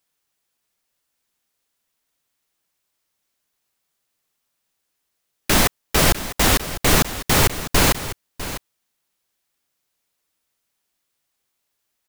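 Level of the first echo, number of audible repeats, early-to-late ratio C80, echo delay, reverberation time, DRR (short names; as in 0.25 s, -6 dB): -13.5 dB, 1, none, 0.651 s, none, none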